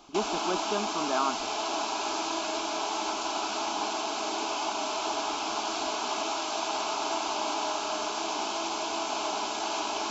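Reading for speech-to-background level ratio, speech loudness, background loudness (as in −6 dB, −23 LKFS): −2.5 dB, −33.0 LKFS, −30.5 LKFS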